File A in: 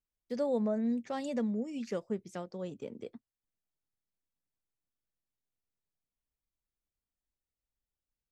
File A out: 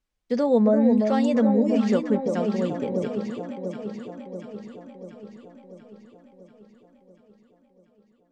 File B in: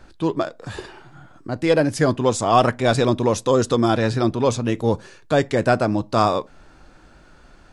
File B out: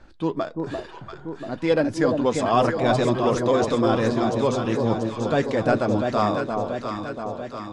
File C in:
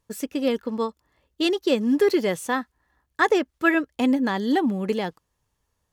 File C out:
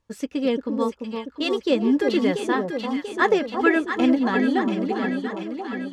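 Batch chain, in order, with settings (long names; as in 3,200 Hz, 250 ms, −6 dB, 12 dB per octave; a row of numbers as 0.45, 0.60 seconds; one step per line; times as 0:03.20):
fade-out on the ending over 1.72 s
flanger 0.52 Hz, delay 3.4 ms, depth 2.2 ms, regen −57%
high-frequency loss of the air 64 metres
delay that swaps between a low-pass and a high-pass 344 ms, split 960 Hz, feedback 77%, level −4 dB
boost into a limiter +8 dB
loudness normalisation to −23 LKFS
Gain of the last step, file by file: +7.5, −7.5, −3.5 decibels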